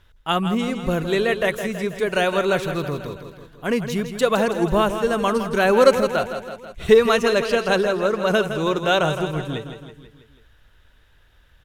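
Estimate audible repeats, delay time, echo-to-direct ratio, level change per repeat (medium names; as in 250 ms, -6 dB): 5, 163 ms, -7.5 dB, -4.5 dB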